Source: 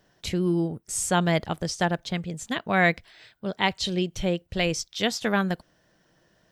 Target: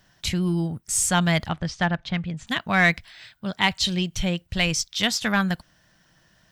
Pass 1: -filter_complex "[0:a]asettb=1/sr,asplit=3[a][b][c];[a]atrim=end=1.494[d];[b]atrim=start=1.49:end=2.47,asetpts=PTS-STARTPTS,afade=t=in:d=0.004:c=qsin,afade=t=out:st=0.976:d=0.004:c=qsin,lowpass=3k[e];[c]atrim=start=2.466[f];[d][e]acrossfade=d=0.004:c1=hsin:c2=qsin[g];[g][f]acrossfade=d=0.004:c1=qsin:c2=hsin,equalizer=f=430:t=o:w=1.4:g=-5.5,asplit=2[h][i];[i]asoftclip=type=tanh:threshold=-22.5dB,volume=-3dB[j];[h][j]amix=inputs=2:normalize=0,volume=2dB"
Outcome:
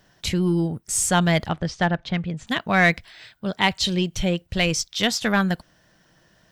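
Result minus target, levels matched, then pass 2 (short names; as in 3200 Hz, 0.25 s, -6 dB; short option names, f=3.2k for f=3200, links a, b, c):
500 Hz band +3.5 dB
-filter_complex "[0:a]asettb=1/sr,asplit=3[a][b][c];[a]atrim=end=1.494[d];[b]atrim=start=1.49:end=2.47,asetpts=PTS-STARTPTS,afade=t=in:d=0.004:c=qsin,afade=t=out:st=0.976:d=0.004:c=qsin,lowpass=3k[e];[c]atrim=start=2.466[f];[d][e]acrossfade=d=0.004:c1=hsin:c2=qsin[g];[g][f]acrossfade=d=0.004:c1=qsin:c2=hsin,equalizer=f=430:t=o:w=1.4:g=-13,asplit=2[h][i];[i]asoftclip=type=tanh:threshold=-22.5dB,volume=-3dB[j];[h][j]amix=inputs=2:normalize=0,volume=2dB"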